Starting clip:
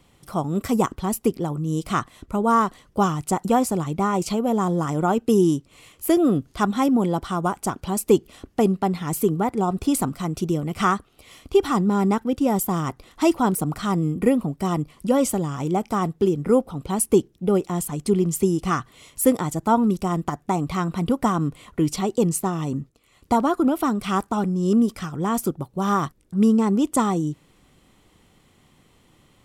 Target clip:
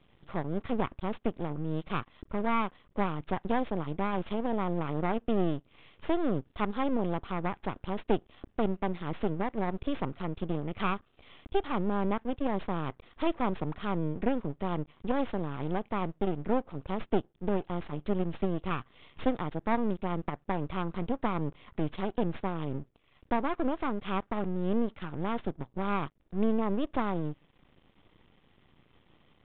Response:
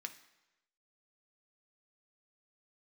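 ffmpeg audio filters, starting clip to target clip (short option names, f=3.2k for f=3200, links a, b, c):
-filter_complex "[0:a]asplit=2[a][b];[b]acompressor=threshold=-32dB:ratio=6,volume=1dB[c];[a][c]amix=inputs=2:normalize=0,aeval=exprs='max(val(0),0)':c=same,aresample=8000,aresample=44100,volume=-8.5dB"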